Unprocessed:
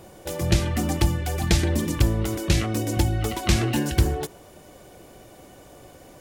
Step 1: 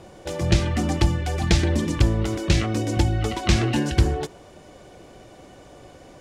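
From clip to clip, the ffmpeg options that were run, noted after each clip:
ffmpeg -i in.wav -af "lowpass=6700,volume=1.5dB" out.wav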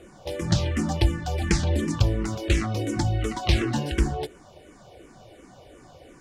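ffmpeg -i in.wav -filter_complex "[0:a]asplit=2[link_01][link_02];[link_02]afreqshift=-2.8[link_03];[link_01][link_03]amix=inputs=2:normalize=1" out.wav

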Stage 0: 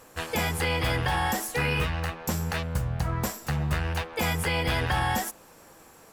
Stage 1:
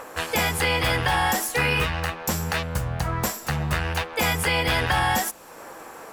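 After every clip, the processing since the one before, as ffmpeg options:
ffmpeg -i in.wav -filter_complex "[0:a]lowshelf=frequency=420:gain=-5.5,acrossover=split=250|2100[link_01][link_02][link_03];[link_02]acompressor=mode=upward:threshold=-37dB:ratio=2.5[link_04];[link_01][link_04][link_03]amix=inputs=3:normalize=0,volume=6dB" out.wav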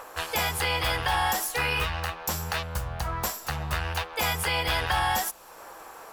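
ffmpeg -i in.wav -af "equalizer=frequency=125:width_type=o:width=1:gain=-8,equalizer=frequency=250:width_type=o:width=1:gain=-10,equalizer=frequency=500:width_type=o:width=1:gain=-4,equalizer=frequency=2000:width_type=o:width=1:gain=-5,equalizer=frequency=8000:width_type=o:width=1:gain=-4" out.wav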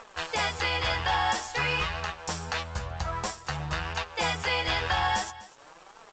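ffmpeg -i in.wav -af "aresample=16000,aeval=exprs='sgn(val(0))*max(abs(val(0))-0.00447,0)':channel_layout=same,aresample=44100,flanger=delay=4.3:depth=7:regen=38:speed=0.5:shape=triangular,aecho=1:1:249:0.126,volume=3.5dB" out.wav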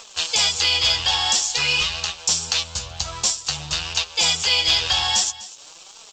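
ffmpeg -i in.wav -af "aexciter=amount=6.6:drive=6.8:freq=2700,volume=-1.5dB" out.wav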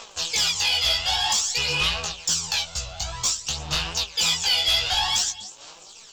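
ffmpeg -i in.wav -af "aphaser=in_gain=1:out_gain=1:delay=1.5:decay=0.57:speed=0.53:type=sinusoidal,asoftclip=type=tanh:threshold=-11dB,flanger=delay=16.5:depth=3.2:speed=2.5" out.wav

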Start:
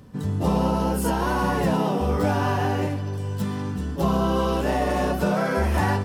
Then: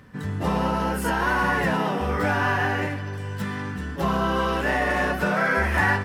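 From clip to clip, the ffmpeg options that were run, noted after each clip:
ffmpeg -i in.wav -af "equalizer=frequency=1800:width_type=o:width=1.2:gain=14,volume=-3.5dB" out.wav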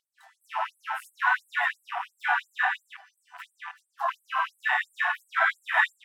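ffmpeg -i in.wav -af "afwtdn=0.0224,afftfilt=real='re*gte(b*sr/1024,640*pow(7900/640,0.5+0.5*sin(2*PI*2.9*pts/sr)))':imag='im*gte(b*sr/1024,640*pow(7900/640,0.5+0.5*sin(2*PI*2.9*pts/sr)))':win_size=1024:overlap=0.75,volume=2dB" out.wav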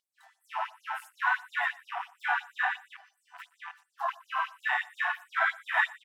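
ffmpeg -i in.wav -af "aecho=1:1:120:0.075,volume=-3.5dB" out.wav

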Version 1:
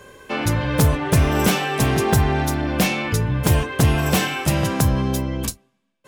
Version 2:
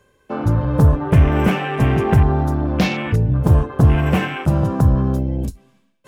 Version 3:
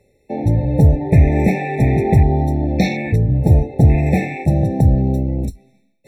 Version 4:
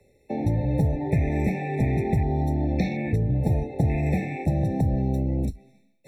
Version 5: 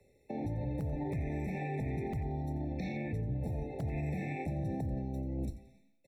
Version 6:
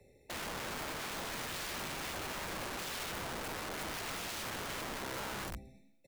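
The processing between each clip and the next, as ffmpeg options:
ffmpeg -i in.wav -af "afwtdn=0.0501,lowshelf=frequency=180:gain=6.5,areverse,acompressor=mode=upward:threshold=-35dB:ratio=2.5,areverse" out.wav
ffmpeg -i in.wav -af "afftfilt=real='re*eq(mod(floor(b*sr/1024/880),2),0)':imag='im*eq(mod(floor(b*sr/1024/880),2),0)':win_size=1024:overlap=0.75,volume=1.5dB" out.wav
ffmpeg -i in.wav -filter_complex "[0:a]acrossover=split=150|330|870|3500[link_01][link_02][link_03][link_04][link_05];[link_01]acompressor=threshold=-23dB:ratio=4[link_06];[link_02]acompressor=threshold=-26dB:ratio=4[link_07];[link_03]acompressor=threshold=-33dB:ratio=4[link_08];[link_04]acompressor=threshold=-37dB:ratio=4[link_09];[link_05]acompressor=threshold=-51dB:ratio=4[link_10];[link_06][link_07][link_08][link_09][link_10]amix=inputs=5:normalize=0,volume=-2dB" out.wav
ffmpeg -i in.wav -filter_complex "[0:a]asplit=2[link_01][link_02];[link_02]aeval=exprs='(mod(3.76*val(0)+1,2)-1)/3.76':channel_layout=same,volume=-12dB[link_03];[link_01][link_03]amix=inputs=2:normalize=0,alimiter=limit=-21dB:level=0:latency=1:release=79,aecho=1:1:88|176|264:0.178|0.0587|0.0194,volume=-8dB" out.wav
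ffmpeg -i in.wav -af "aeval=exprs='(mod(94.4*val(0)+1,2)-1)/94.4':channel_layout=same,volume=3.5dB" out.wav

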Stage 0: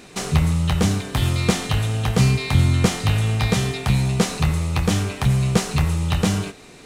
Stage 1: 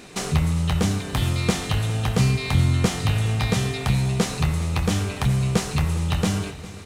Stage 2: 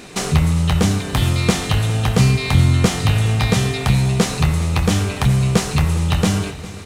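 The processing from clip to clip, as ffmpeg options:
ffmpeg -i in.wav -filter_complex "[0:a]asplit=2[link_01][link_02];[link_02]acompressor=threshold=-26dB:ratio=6,volume=-2.5dB[link_03];[link_01][link_03]amix=inputs=2:normalize=0,aecho=1:1:404|808|1212|1616|2020:0.141|0.0763|0.0412|0.0222|0.012,volume=-4.5dB" out.wav
ffmpeg -i in.wav -af "asoftclip=type=hard:threshold=-9.5dB,volume=5.5dB" out.wav

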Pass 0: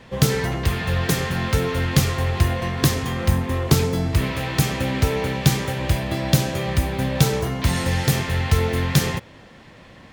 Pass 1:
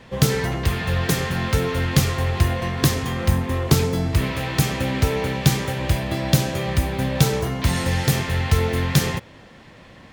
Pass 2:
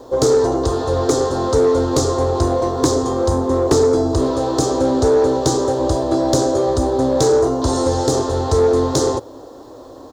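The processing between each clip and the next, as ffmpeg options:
ffmpeg -i in.wav -af anull out.wav
ffmpeg -i in.wav -af "firequalizer=gain_entry='entry(120,0);entry(180,-18);entry(270,13);entry(420,15);entry(650,11);entry(1200,6);entry(2200,-25);entry(3800,2);entry(7100,9);entry(13000,-20)':delay=0.05:min_phase=1,asoftclip=type=tanh:threshold=-7dB,acrusher=bits=9:mix=0:aa=0.000001" out.wav

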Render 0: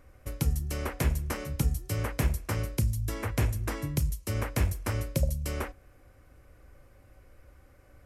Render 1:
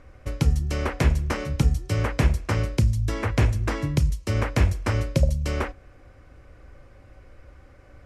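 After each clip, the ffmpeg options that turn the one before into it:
ffmpeg -i in.wav -af "lowpass=5700,volume=7dB" out.wav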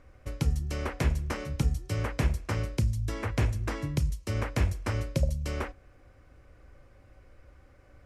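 ffmpeg -i in.wav -af "highshelf=frequency=10000:gain=5,volume=-6.5dB" out.wav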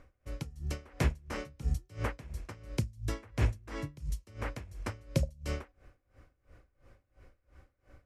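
ffmpeg -i in.wav -af "aeval=exprs='val(0)*pow(10,-24*(0.5-0.5*cos(2*PI*2.9*n/s))/20)':channel_layout=same" out.wav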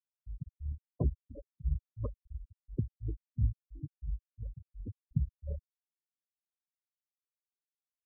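ffmpeg -i in.wav -af "afftfilt=real='re*gte(hypot(re,im),0.0794)':imag='im*gte(hypot(re,im),0.0794)':win_size=1024:overlap=0.75,afftfilt=real='re*lt(b*sr/1024,230*pow(5300/230,0.5+0.5*sin(2*PI*1.1*pts/sr)))':imag='im*lt(b*sr/1024,230*pow(5300/230,0.5+0.5*sin(2*PI*1.1*pts/sr)))':win_size=1024:overlap=0.75,volume=-1dB" out.wav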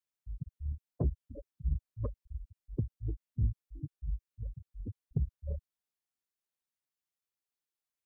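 ffmpeg -i in.wav -af "asoftclip=type=tanh:threshold=-22.5dB,volume=1.5dB" out.wav

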